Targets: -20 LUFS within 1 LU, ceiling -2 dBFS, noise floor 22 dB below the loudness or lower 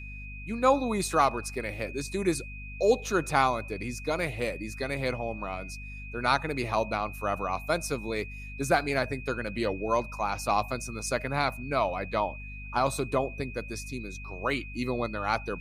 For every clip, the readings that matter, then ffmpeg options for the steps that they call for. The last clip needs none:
hum 50 Hz; harmonics up to 250 Hz; hum level -39 dBFS; steady tone 2500 Hz; tone level -43 dBFS; loudness -29.5 LUFS; peak -8.5 dBFS; loudness target -20.0 LUFS
-> -af "bandreject=f=50:t=h:w=4,bandreject=f=100:t=h:w=4,bandreject=f=150:t=h:w=4,bandreject=f=200:t=h:w=4,bandreject=f=250:t=h:w=4"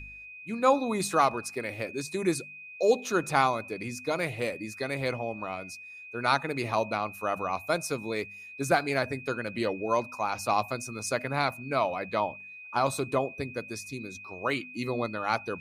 hum none; steady tone 2500 Hz; tone level -43 dBFS
-> -af "bandreject=f=2.5k:w=30"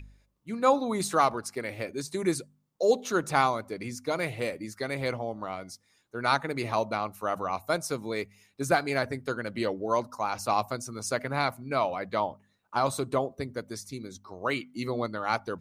steady tone none; loudness -30.0 LUFS; peak -8.5 dBFS; loudness target -20.0 LUFS
-> -af "volume=10dB,alimiter=limit=-2dB:level=0:latency=1"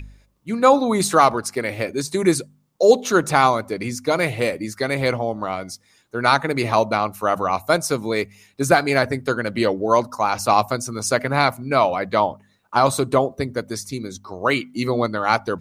loudness -20.5 LUFS; peak -2.0 dBFS; noise floor -61 dBFS

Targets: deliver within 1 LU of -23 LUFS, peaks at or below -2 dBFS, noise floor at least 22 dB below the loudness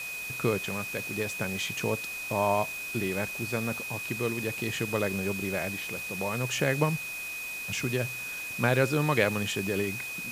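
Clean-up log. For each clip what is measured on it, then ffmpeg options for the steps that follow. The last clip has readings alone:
steady tone 2500 Hz; tone level -35 dBFS; noise floor -37 dBFS; noise floor target -52 dBFS; loudness -29.5 LUFS; peak -9.5 dBFS; loudness target -23.0 LUFS
-> -af "bandreject=f=2.5k:w=30"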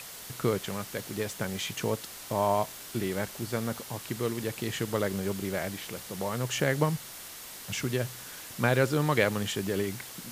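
steady tone none; noise floor -44 dBFS; noise floor target -53 dBFS
-> -af "afftdn=nr=9:nf=-44"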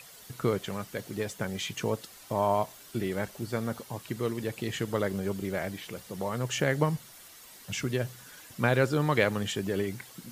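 noise floor -51 dBFS; noise floor target -53 dBFS
-> -af "afftdn=nr=6:nf=-51"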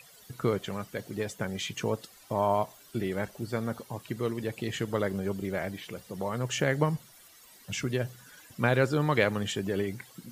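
noise floor -55 dBFS; loudness -31.5 LUFS; peak -9.5 dBFS; loudness target -23.0 LUFS
-> -af "volume=8.5dB,alimiter=limit=-2dB:level=0:latency=1"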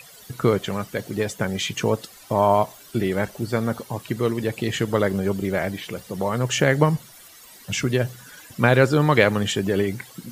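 loudness -23.0 LUFS; peak -2.0 dBFS; noise floor -47 dBFS

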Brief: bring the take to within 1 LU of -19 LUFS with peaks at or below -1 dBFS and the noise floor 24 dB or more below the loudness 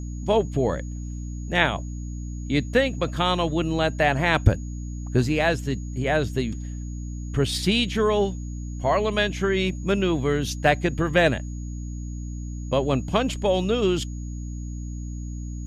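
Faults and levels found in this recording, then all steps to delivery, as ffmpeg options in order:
hum 60 Hz; harmonics up to 300 Hz; hum level -30 dBFS; steady tone 6700 Hz; tone level -49 dBFS; loudness -24.5 LUFS; peak -3.0 dBFS; loudness target -19.0 LUFS
-> -af "bandreject=f=60:t=h:w=4,bandreject=f=120:t=h:w=4,bandreject=f=180:t=h:w=4,bandreject=f=240:t=h:w=4,bandreject=f=300:t=h:w=4"
-af "bandreject=f=6.7k:w=30"
-af "volume=5.5dB,alimiter=limit=-1dB:level=0:latency=1"

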